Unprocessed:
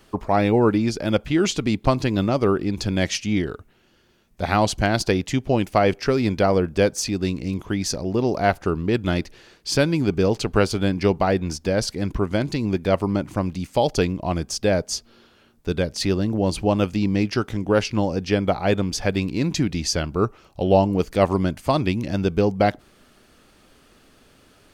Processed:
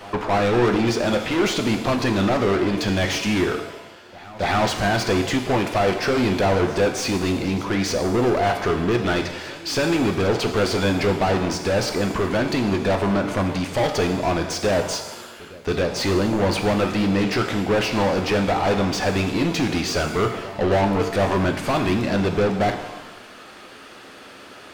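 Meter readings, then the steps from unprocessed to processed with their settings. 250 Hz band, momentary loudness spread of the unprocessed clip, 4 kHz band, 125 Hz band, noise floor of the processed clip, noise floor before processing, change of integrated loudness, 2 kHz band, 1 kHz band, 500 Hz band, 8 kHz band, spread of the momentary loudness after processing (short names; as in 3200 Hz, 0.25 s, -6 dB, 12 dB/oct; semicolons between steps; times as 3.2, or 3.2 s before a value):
+0.5 dB, 6 LU, +2.5 dB, -1.0 dB, -42 dBFS, -56 dBFS, +0.5 dB, +4.0 dB, +2.0 dB, +0.5 dB, -0.5 dB, 8 LU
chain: overdrive pedal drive 32 dB, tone 2300 Hz, clips at -4 dBFS; pre-echo 0.275 s -20 dB; shimmer reverb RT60 1 s, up +7 st, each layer -8 dB, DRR 5 dB; gain -9 dB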